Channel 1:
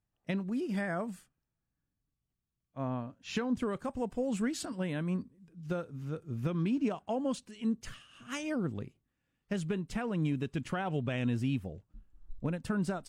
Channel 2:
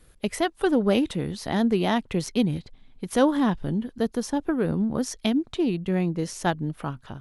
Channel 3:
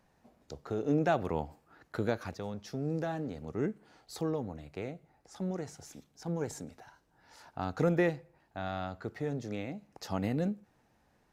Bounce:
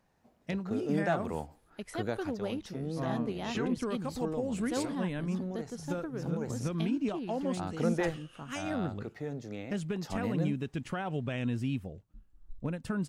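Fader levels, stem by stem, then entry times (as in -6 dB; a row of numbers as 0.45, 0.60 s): -1.0, -14.5, -3.0 dB; 0.20, 1.55, 0.00 s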